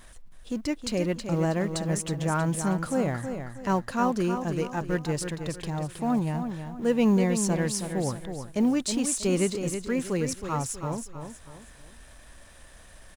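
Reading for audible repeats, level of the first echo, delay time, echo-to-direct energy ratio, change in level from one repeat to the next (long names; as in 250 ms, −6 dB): 3, −8.0 dB, 320 ms, −7.5 dB, −8.5 dB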